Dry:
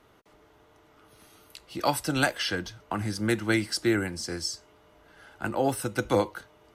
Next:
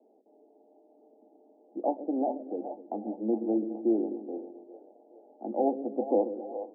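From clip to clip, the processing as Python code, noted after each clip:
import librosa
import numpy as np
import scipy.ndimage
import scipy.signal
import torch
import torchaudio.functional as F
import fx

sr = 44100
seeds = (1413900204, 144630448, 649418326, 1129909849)

y = scipy.signal.sosfilt(scipy.signal.cheby1(5, 1.0, [220.0, 810.0], 'bandpass', fs=sr, output='sos'), x)
y = fx.echo_split(y, sr, split_hz=510.0, low_ms=127, high_ms=417, feedback_pct=52, wet_db=-9.0)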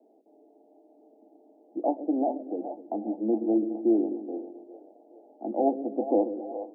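y = fx.small_body(x, sr, hz=(310.0, 670.0), ring_ms=45, db=6)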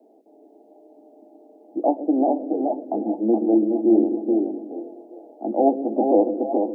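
y = x + 10.0 ** (-4.0 / 20.0) * np.pad(x, (int(423 * sr / 1000.0), 0))[:len(x)]
y = F.gain(torch.from_numpy(y), 6.5).numpy()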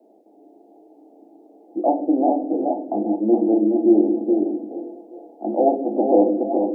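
y = fx.room_shoebox(x, sr, seeds[0], volume_m3=280.0, walls='furnished', distance_m=0.85)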